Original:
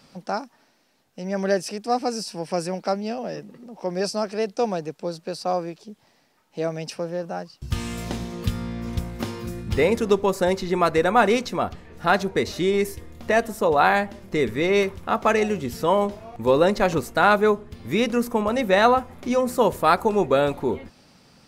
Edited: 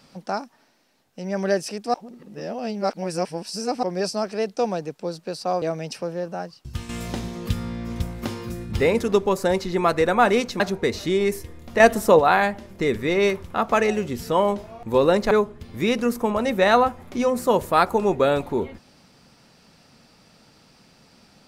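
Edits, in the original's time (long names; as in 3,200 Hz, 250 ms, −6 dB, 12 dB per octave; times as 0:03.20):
0:01.94–0:03.83: reverse
0:05.62–0:06.59: remove
0:07.51–0:07.86: fade out, to −9.5 dB
0:11.57–0:12.13: remove
0:13.33–0:13.72: clip gain +6.5 dB
0:16.84–0:17.42: remove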